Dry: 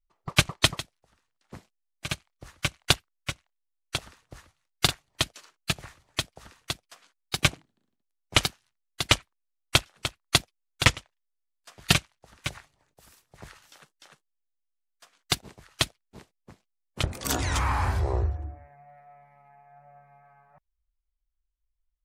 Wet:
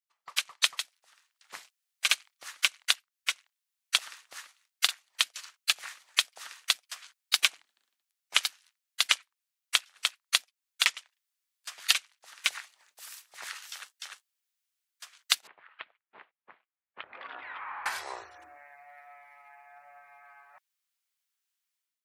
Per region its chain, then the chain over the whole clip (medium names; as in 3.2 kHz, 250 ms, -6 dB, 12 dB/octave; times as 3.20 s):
15.47–17.86 s: compression, threshold -37 dBFS + Gaussian low-pass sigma 4.2 samples
whole clip: compression 6:1, threshold -29 dBFS; high-pass 1.5 kHz 12 dB/octave; level rider gain up to 12 dB